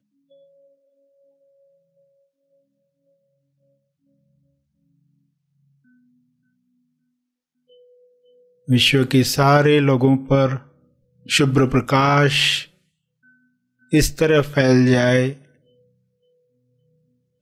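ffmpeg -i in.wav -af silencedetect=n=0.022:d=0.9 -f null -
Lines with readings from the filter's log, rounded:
silence_start: 0.00
silence_end: 8.68 | silence_duration: 8.68
silence_start: 12.64
silence_end: 13.93 | silence_duration: 1.29
silence_start: 15.34
silence_end: 17.41 | silence_duration: 2.08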